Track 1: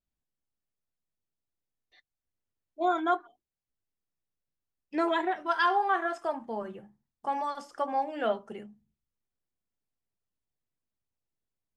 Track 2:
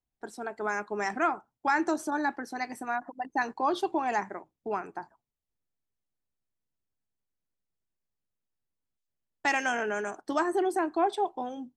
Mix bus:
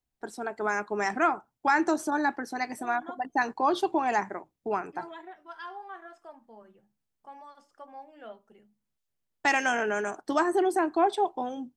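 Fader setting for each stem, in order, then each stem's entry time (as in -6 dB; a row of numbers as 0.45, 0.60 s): -16.0, +2.5 dB; 0.00, 0.00 s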